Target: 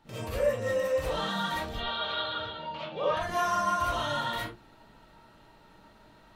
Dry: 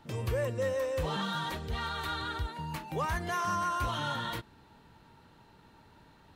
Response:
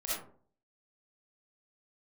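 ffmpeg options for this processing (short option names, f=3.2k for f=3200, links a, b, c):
-filter_complex "[0:a]asettb=1/sr,asplit=3[a][b][c];[a]atrim=end=1.734[d];[b]atrim=start=1.73:end=3.17,asetpts=PTS-STARTPTS,afade=t=in:d=0.004:c=qsin,afade=t=out:st=1.436:d=0.004:c=qsin,highpass=f=110:w=0.5412,highpass=f=110:w=1.3066,equalizer=f=160:t=q:w=4:g=-4,equalizer=f=290:t=q:w=4:g=-7,equalizer=f=580:t=q:w=4:g=9,equalizer=f=820:t=q:w=4:g=-4,equalizer=f=1.9k:t=q:w=4:g=-8,equalizer=f=3.3k:t=q:w=4:g=9,lowpass=f=4.1k:w=0.5412,lowpass=f=4.1k:w=1.3066[e];[c]atrim=start=3.166[f];[d][e]acrossfade=d=0.004:c1=hsin:c2=qsin[g];[g][f]acrossfade=d=0.004:c1=qsin:c2=hsin,bandreject=f=50:t=h:w=6,bandreject=f=100:t=h:w=6,bandreject=f=150:t=h:w=6,bandreject=f=200:t=h:w=6,bandreject=f=250:t=h:w=6,bandreject=f=300:t=h:w=6,bandreject=f=350:t=h:w=6[h];[1:a]atrim=start_sample=2205,afade=t=out:st=0.2:d=0.01,atrim=end_sample=9261[i];[h][i]afir=irnorm=-1:irlink=0"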